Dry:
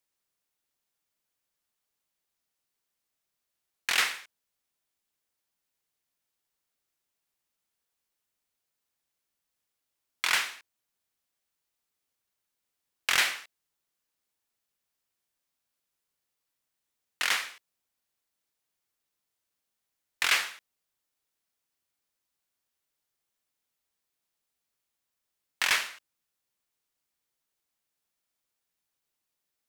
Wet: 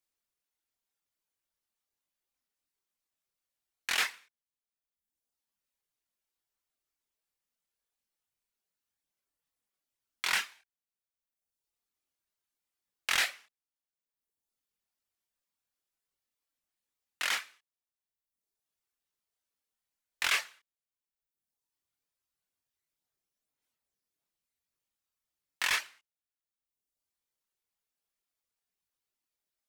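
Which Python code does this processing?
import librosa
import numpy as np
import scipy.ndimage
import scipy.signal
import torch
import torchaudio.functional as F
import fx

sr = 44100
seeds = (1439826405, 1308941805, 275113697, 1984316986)

y = fx.dereverb_blind(x, sr, rt60_s=1.1)
y = fx.chorus_voices(y, sr, voices=6, hz=0.88, base_ms=25, depth_ms=2.7, mix_pct=45)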